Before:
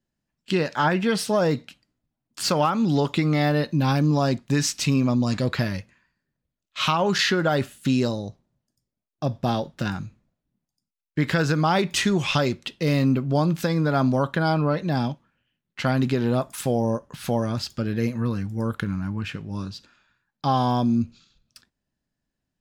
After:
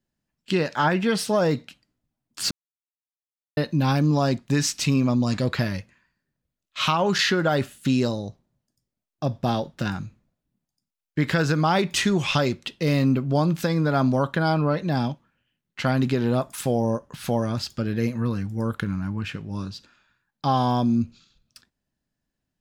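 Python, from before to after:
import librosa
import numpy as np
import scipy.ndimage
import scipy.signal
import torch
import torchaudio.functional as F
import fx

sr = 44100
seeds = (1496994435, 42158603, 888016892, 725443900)

y = fx.edit(x, sr, fx.silence(start_s=2.51, length_s=1.06), tone=tone)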